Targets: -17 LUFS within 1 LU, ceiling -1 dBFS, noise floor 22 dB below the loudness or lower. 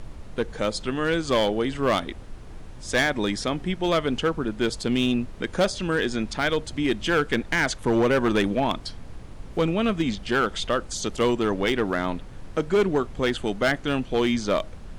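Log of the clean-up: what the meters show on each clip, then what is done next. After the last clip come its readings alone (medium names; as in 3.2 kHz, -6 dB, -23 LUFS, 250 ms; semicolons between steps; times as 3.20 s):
clipped samples 1.6%; clipping level -15.5 dBFS; noise floor -40 dBFS; noise floor target -47 dBFS; loudness -25.0 LUFS; peak level -15.5 dBFS; loudness target -17.0 LUFS
-> clip repair -15.5 dBFS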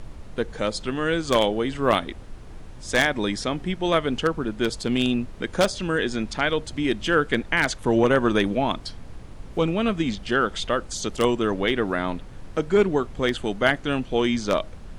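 clipped samples 0.0%; noise floor -40 dBFS; noise floor target -46 dBFS
-> noise print and reduce 6 dB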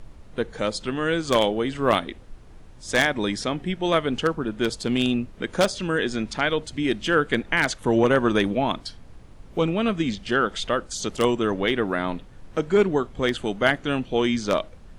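noise floor -46 dBFS; loudness -24.0 LUFS; peak level -6.5 dBFS; loudness target -17.0 LUFS
-> trim +7 dB; peak limiter -1 dBFS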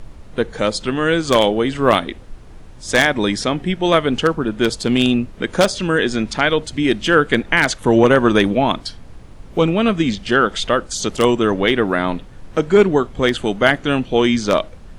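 loudness -17.0 LUFS; peak level -1.0 dBFS; noise floor -39 dBFS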